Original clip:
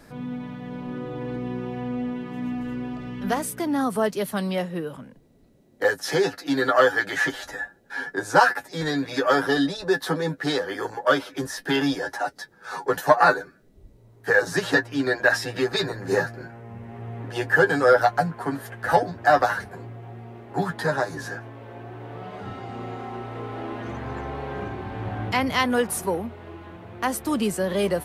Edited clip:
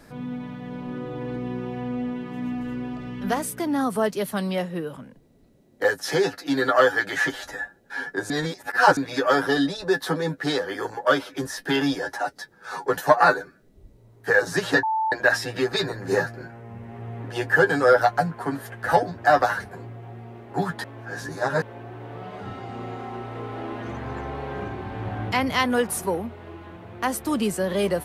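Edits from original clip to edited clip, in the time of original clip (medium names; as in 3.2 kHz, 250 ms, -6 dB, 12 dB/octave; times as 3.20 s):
8.30–8.97 s: reverse
14.83–15.12 s: bleep 881 Hz -20.5 dBFS
20.84–21.62 s: reverse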